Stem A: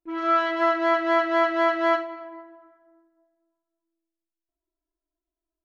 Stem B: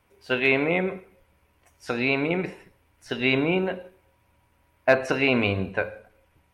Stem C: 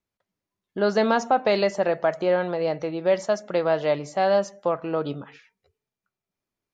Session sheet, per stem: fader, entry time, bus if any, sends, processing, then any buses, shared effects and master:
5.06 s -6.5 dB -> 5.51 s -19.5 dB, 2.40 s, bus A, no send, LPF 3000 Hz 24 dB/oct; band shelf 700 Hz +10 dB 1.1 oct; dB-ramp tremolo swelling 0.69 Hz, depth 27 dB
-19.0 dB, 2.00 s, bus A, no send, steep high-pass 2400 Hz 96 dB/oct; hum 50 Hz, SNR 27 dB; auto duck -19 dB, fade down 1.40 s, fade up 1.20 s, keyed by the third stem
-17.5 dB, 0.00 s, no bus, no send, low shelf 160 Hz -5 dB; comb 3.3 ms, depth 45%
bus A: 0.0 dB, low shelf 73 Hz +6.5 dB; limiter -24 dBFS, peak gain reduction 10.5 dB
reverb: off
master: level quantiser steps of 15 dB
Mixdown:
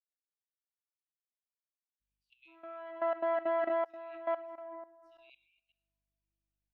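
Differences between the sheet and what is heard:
stem A -6.5 dB -> +1.0 dB; stem B -19.0 dB -> -30.0 dB; stem C: muted

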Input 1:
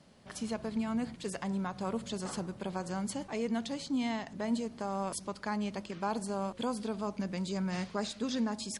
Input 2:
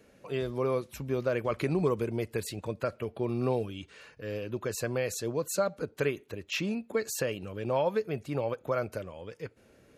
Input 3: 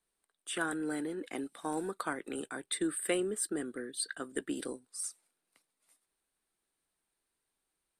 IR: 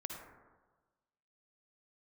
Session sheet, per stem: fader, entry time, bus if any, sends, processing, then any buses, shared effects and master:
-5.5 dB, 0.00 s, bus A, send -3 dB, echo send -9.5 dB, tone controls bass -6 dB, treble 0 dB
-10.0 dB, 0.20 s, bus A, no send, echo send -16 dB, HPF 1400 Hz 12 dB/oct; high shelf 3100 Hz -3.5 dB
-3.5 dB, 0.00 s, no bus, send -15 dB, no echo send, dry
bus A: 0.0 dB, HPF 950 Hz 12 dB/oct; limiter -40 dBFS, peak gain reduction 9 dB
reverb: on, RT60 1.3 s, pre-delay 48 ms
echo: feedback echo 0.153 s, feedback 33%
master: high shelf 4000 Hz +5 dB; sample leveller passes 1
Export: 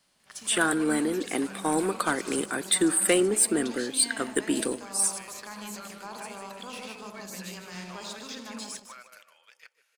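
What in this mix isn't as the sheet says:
stem 2 -10.0 dB -> -1.0 dB; stem 3 -3.5 dB -> +5.0 dB

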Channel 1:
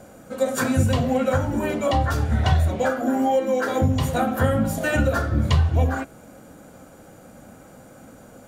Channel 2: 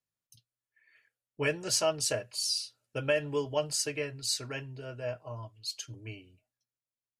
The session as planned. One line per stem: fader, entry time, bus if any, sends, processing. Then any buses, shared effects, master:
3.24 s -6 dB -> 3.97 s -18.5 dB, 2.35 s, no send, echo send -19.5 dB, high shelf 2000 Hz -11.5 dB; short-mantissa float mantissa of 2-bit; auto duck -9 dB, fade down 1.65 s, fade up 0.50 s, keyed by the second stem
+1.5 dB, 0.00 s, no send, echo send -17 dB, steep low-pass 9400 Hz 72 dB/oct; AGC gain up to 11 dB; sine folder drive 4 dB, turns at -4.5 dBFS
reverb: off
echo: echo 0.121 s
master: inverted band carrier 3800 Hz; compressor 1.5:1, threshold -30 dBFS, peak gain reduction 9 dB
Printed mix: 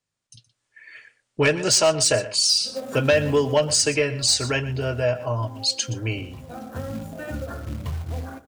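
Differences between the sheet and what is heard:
stem 1 -6.0 dB -> +4.0 dB; master: missing inverted band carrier 3800 Hz

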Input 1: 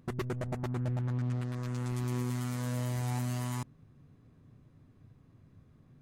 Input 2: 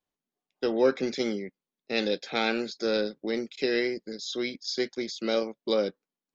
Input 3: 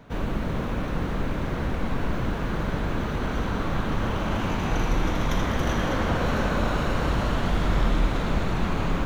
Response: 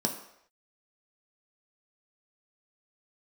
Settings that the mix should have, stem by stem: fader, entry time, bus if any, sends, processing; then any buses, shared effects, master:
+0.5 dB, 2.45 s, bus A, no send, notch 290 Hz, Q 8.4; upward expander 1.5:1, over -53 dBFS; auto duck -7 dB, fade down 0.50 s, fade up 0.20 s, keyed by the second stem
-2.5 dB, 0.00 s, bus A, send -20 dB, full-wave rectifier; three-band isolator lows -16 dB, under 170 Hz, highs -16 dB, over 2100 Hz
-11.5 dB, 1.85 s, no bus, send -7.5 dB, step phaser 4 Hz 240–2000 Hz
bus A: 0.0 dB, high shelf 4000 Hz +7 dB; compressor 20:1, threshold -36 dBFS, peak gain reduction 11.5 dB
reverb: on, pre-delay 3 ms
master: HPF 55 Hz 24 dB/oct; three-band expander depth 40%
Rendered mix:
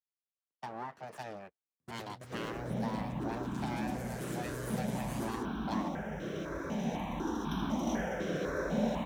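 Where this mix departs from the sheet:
stem 1: entry 2.45 s -> 1.80 s; stem 2: send off; stem 3: entry 1.85 s -> 2.20 s

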